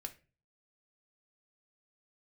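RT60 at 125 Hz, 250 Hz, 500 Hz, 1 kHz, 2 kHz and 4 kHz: 0.65, 0.45, 0.40, 0.30, 0.35, 0.25 seconds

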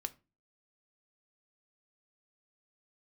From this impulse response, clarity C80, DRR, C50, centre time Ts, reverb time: 27.0 dB, 8.5 dB, 21.0 dB, 3 ms, 0.30 s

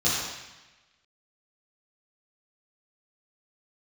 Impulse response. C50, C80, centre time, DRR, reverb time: −1.0 dB, 1.5 dB, 83 ms, −10.0 dB, 1.1 s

